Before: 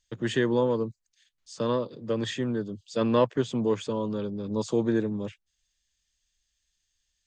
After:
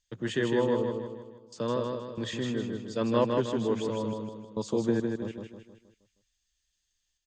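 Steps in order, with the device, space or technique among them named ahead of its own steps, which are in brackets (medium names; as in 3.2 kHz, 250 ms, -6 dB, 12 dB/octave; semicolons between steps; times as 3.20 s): trance gate with a delay (trance gate "xxxxx..xx.xxxx" 69 bpm -24 dB; feedback delay 157 ms, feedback 46%, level -4 dB); trim -3.5 dB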